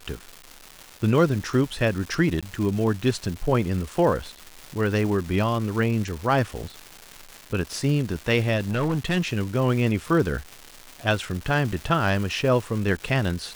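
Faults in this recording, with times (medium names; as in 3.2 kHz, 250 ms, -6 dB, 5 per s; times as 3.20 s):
crackle 520 per s -31 dBFS
2.41–2.43 s: dropout 16 ms
8.56–9.18 s: clipped -19.5 dBFS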